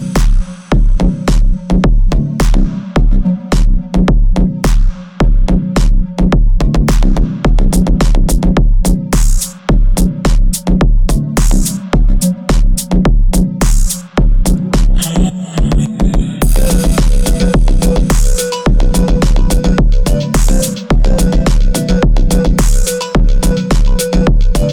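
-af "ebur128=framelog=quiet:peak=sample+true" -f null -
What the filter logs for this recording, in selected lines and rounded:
Integrated loudness:
  I:         -13.2 LUFS
  Threshold: -23.2 LUFS
Loudness range:
  LRA:         1.2 LU
  Threshold: -33.2 LUFS
  LRA low:   -13.8 LUFS
  LRA high:  -12.6 LUFS
Sample peak:
  Peak:       -4.0 dBFS
True peak:
  Peak:       -3.8 dBFS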